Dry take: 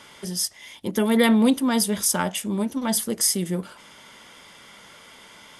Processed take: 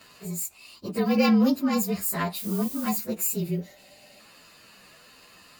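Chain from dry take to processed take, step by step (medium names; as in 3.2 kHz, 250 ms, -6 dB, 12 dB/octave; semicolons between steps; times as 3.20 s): frequency axis rescaled in octaves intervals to 112%; 2.35–2.97 s: added noise violet -37 dBFS; 3.50–4.17 s: spectral replace 580–1800 Hz before; trim -1 dB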